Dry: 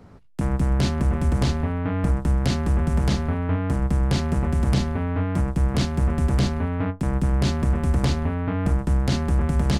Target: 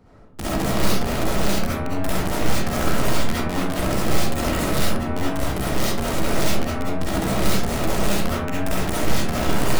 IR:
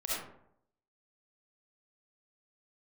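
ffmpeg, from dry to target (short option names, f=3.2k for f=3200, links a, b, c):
-filter_complex "[0:a]aeval=exprs='0.335*(cos(1*acos(clip(val(0)/0.335,-1,1)))-cos(1*PI/2))+0.0668*(cos(4*acos(clip(val(0)/0.335,-1,1)))-cos(4*PI/2))+0.00668*(cos(6*acos(clip(val(0)/0.335,-1,1)))-cos(6*PI/2))':c=same,aeval=exprs='(mod(6.31*val(0)+1,2)-1)/6.31':c=same[a];[1:a]atrim=start_sample=2205[b];[a][b]afir=irnorm=-1:irlink=0,volume=-3dB"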